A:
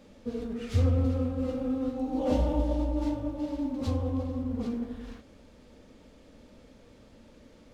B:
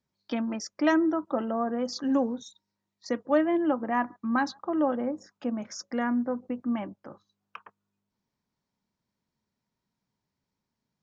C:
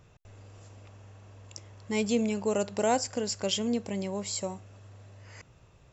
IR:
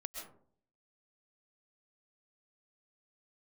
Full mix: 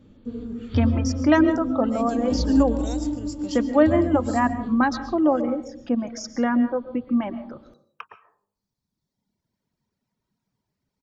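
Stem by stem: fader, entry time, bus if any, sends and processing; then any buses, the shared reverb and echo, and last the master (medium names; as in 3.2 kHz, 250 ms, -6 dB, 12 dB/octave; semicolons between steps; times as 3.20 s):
-2.5 dB, 0.00 s, no send, rippled Chebyshev low-pass 4.6 kHz, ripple 6 dB; resonant low shelf 450 Hz +9.5 dB, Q 1.5
+1.0 dB, 0.45 s, send -3 dB, reverb removal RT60 1.6 s; bass shelf 490 Hz +5 dB
-15.5 dB, 0.00 s, send -7 dB, tone controls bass +14 dB, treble +5 dB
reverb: on, RT60 0.55 s, pre-delay 90 ms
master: none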